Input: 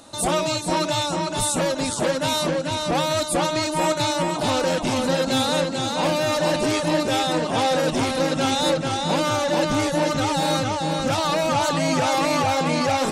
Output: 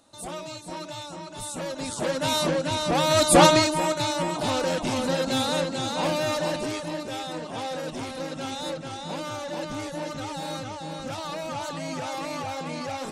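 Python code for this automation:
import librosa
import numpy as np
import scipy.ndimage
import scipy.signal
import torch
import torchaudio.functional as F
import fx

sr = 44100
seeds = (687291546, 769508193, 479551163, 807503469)

y = fx.gain(x, sr, db=fx.line((1.33, -14.0), (2.36, -1.5), (2.97, -1.5), (3.45, 8.5), (3.82, -4.0), (6.28, -4.0), (6.97, -11.5)))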